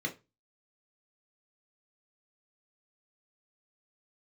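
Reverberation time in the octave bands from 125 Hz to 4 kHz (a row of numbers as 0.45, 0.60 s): 0.35, 0.25, 0.25, 0.25, 0.25, 0.20 s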